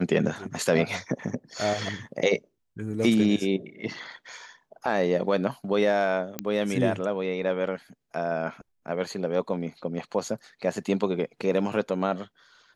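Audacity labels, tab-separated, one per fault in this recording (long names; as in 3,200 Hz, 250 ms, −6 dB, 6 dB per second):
6.390000	6.390000	click −12 dBFS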